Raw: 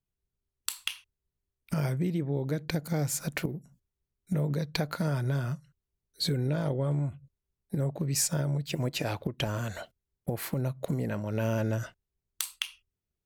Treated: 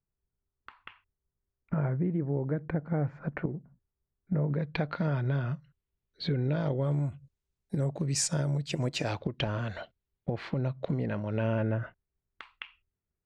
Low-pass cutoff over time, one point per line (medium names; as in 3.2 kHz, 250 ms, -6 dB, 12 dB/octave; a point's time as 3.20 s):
low-pass 24 dB/octave
4.34 s 1.7 kHz
4.84 s 3.5 kHz
6.40 s 3.5 kHz
7.07 s 8.5 kHz
8.94 s 8.5 kHz
9.48 s 4 kHz
11.24 s 4 kHz
11.82 s 2.2 kHz